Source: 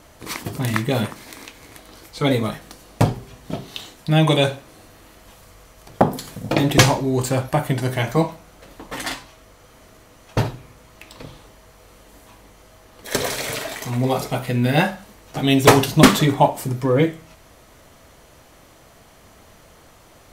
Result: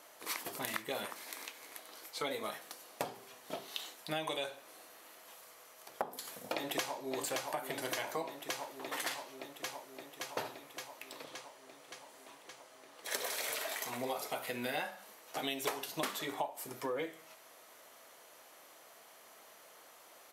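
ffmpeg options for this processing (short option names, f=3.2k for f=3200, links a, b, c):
-filter_complex "[0:a]asplit=2[a][b];[b]afade=t=in:st=6.54:d=0.01,afade=t=out:st=7.17:d=0.01,aecho=0:1:570|1140|1710|2280|2850|3420|3990|4560|5130|5700|6270|6840:0.354813|0.26611|0.199583|0.149687|0.112265|0.0841989|0.0631492|0.0473619|0.0355214|0.0266411|0.0199808|0.0149856[c];[a][c]amix=inputs=2:normalize=0,asettb=1/sr,asplit=3[d][e][f];[d]atrim=end=11.244[g];[e]atrim=start=11.24:end=13.13,asetpts=PTS-STARTPTS,afade=t=in:d=0.004:c=qsin,afade=t=out:st=1.886:d=0.004:c=qsin,equalizer=f=13k:t=o:w=0.27:g=-13[h];[f]atrim=start=13.126[i];[g][h]acrossfade=d=0.004:c1=hsin:c2=qsin[j];[j][i]acrossfade=d=0.004:c1=qsin:c2=hsin,highpass=510,equalizer=f=12k:w=2.2:g=7,acompressor=threshold=-27dB:ratio=8,volume=-7dB"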